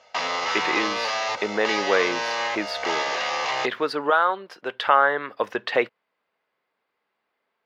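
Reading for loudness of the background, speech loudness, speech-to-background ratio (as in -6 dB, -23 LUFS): -26.0 LUFS, -24.5 LUFS, 1.5 dB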